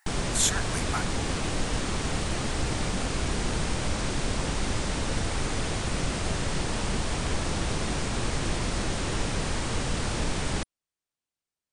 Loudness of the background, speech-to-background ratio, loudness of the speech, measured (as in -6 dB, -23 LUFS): -30.0 LUFS, 1.0 dB, -29.0 LUFS